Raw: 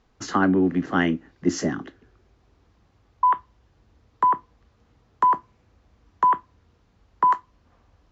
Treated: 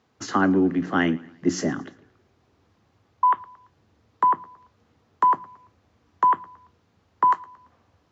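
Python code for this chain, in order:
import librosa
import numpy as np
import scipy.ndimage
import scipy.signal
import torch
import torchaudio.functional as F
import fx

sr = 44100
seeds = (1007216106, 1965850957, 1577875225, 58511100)

y = scipy.signal.sosfilt(scipy.signal.butter(4, 85.0, 'highpass', fs=sr, output='sos'), x)
y = fx.hum_notches(y, sr, base_hz=60, count=3)
y = fx.echo_feedback(y, sr, ms=113, feedback_pct=43, wet_db=-22)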